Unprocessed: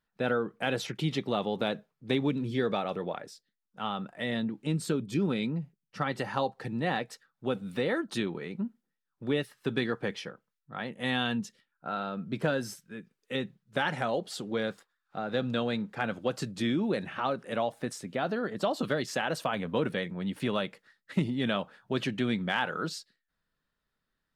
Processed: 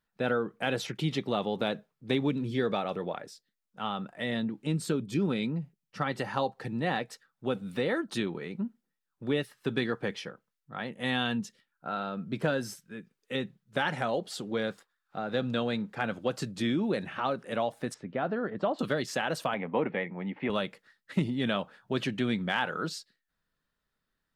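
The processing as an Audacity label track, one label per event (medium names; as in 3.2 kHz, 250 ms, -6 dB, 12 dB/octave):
17.940000	18.790000	low-pass 2.1 kHz
19.540000	20.500000	cabinet simulation 180–2500 Hz, peaks and dips at 820 Hz +9 dB, 1.5 kHz -6 dB, 2.1 kHz +7 dB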